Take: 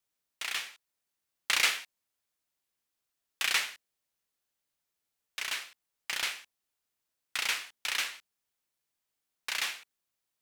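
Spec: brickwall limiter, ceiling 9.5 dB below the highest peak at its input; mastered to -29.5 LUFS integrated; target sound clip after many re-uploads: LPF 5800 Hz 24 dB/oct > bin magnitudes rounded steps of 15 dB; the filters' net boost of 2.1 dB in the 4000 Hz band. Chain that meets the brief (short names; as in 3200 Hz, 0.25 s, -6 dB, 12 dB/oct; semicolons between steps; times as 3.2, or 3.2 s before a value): bell 4000 Hz +3 dB; limiter -19.5 dBFS; LPF 5800 Hz 24 dB/oct; bin magnitudes rounded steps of 15 dB; gain +5 dB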